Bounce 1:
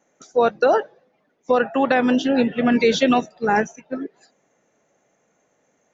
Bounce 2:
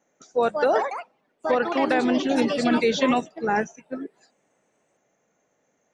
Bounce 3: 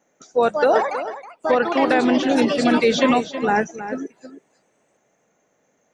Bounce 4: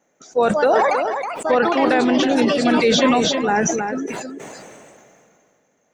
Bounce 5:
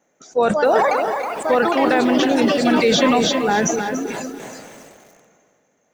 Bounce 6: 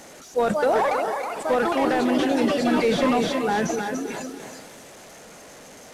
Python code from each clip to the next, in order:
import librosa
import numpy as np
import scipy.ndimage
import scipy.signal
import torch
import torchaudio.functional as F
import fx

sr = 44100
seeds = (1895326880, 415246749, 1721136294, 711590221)

y1 = fx.echo_pitch(x, sr, ms=259, semitones=4, count=2, db_per_echo=-6.0)
y1 = F.gain(torch.from_numpy(y1), -4.5).numpy()
y2 = y1 + 10.0 ** (-12.0 / 20.0) * np.pad(y1, (int(320 * sr / 1000.0), 0))[:len(y1)]
y2 = F.gain(torch.from_numpy(y2), 4.0).numpy()
y3 = fx.sustainer(y2, sr, db_per_s=24.0)
y4 = fx.echo_crushed(y3, sr, ms=285, feedback_pct=55, bits=6, wet_db=-12.5)
y5 = fx.delta_mod(y4, sr, bps=64000, step_db=-34.0)
y5 = F.gain(torch.from_numpy(y5), -4.5).numpy()